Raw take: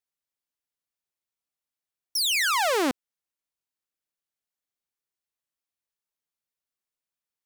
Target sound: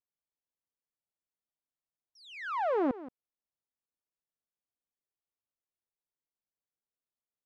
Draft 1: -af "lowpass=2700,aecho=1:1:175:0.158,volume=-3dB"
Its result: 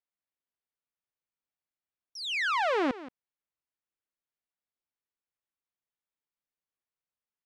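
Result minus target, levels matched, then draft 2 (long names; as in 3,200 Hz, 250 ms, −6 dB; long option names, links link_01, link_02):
2,000 Hz band +7.5 dB
-af "lowpass=910,aecho=1:1:175:0.158,volume=-3dB"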